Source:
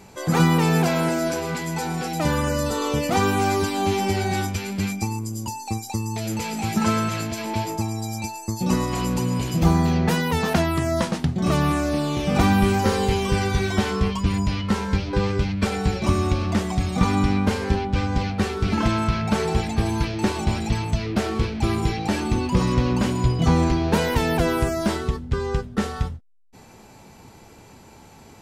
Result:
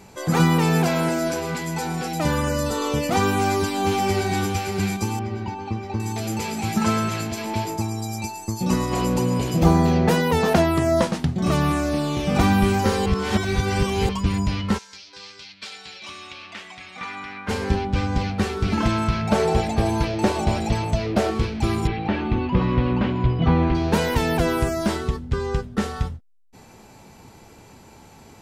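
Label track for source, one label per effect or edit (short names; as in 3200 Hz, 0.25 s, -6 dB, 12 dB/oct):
3.260000	4.380000	echo throw 0.58 s, feedback 70%, level -8 dB
5.190000	6.000000	air absorption 270 m
8.910000	11.070000	bell 510 Hz +6.5 dB 1.5 oct
13.060000	14.090000	reverse
14.770000	17.480000	band-pass 6200 Hz -> 1700 Hz, Q 1.6
19.300000	21.310000	bell 600 Hz +9 dB 0.89 oct
21.870000	23.750000	LPF 3300 Hz 24 dB/oct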